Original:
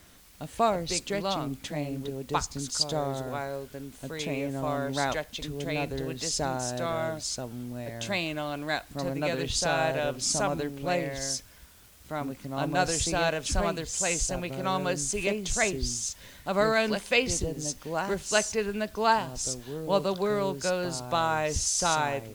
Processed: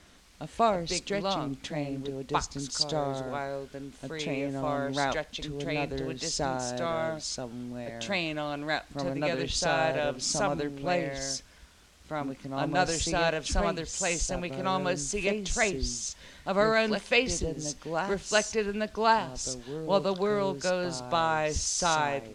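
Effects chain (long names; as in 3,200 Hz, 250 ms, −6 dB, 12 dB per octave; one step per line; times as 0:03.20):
low-pass filter 6,900 Hz 12 dB per octave
parametric band 110 Hz −8.5 dB 0.37 octaves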